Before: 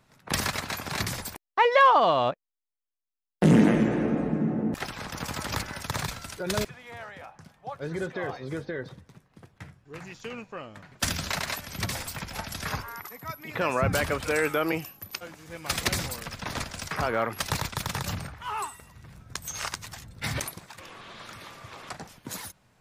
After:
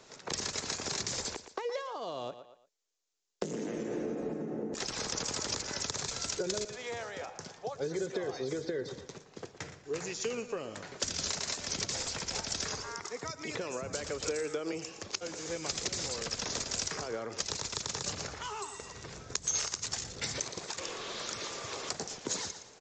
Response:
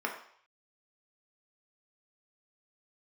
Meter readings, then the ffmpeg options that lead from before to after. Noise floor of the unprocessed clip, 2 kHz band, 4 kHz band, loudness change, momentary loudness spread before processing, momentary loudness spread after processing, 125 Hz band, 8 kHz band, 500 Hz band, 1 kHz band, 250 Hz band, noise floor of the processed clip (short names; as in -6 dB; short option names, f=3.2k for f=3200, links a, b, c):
under -85 dBFS, -10.0 dB, -1.0 dB, -8.0 dB, 20 LU, 8 LU, -14.0 dB, +2.5 dB, -6.5 dB, -14.0 dB, -12.5 dB, -58 dBFS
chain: -filter_complex "[0:a]acompressor=threshold=-33dB:ratio=12,asplit=2[a][b];[b]aecho=0:1:116|232|348:0.188|0.0471|0.0118[c];[a][c]amix=inputs=2:normalize=0,acrossover=split=260|5600[d][e][f];[d]acompressor=threshold=-42dB:ratio=4[g];[e]acompressor=threshold=-48dB:ratio=4[h];[f]acompressor=threshold=-49dB:ratio=4[i];[g][h][i]amix=inputs=3:normalize=0,equalizer=f=430:w=1.7:g=10.5,aresample=16000,aresample=44100,bass=f=250:g=-9,treble=f=4k:g=13,volume=5.5dB"